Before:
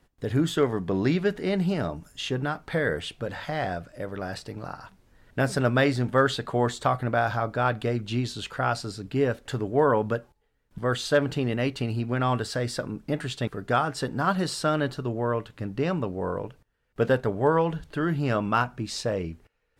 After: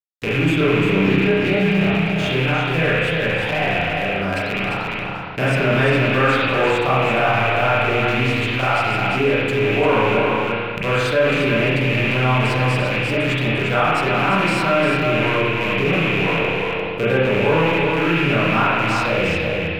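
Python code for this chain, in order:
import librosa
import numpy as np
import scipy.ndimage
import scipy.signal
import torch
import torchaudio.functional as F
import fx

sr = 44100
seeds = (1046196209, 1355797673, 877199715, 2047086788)

p1 = fx.rattle_buzz(x, sr, strikes_db=-34.0, level_db=-17.0)
p2 = fx.high_shelf(p1, sr, hz=9200.0, db=3.0)
p3 = fx.hum_notches(p2, sr, base_hz=50, count=5)
p4 = np.sign(p3) * np.maximum(np.abs(p3) - 10.0 ** (-47.0 / 20.0), 0.0)
p5 = p4 + fx.echo_single(p4, sr, ms=348, db=-6.5, dry=0)
p6 = fx.rev_spring(p5, sr, rt60_s=1.1, pass_ms=(31, 36), chirp_ms=75, drr_db=-9.5)
p7 = fx.env_flatten(p6, sr, amount_pct=50)
y = p7 * librosa.db_to_amplitude(-6.0)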